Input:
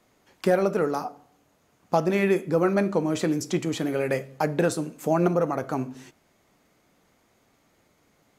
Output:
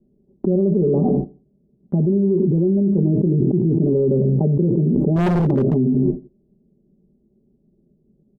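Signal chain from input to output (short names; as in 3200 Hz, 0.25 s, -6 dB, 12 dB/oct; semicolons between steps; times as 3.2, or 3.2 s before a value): inverse Chebyshev low-pass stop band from 1600 Hz, stop band 70 dB; gate -56 dBFS, range -33 dB; comb 5.1 ms, depth 89%; on a send: feedback echo 85 ms, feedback 30%, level -23 dB; 5.16–5.74 on the sum: hard clip -28.5 dBFS, distortion -11 dB; fast leveller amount 100%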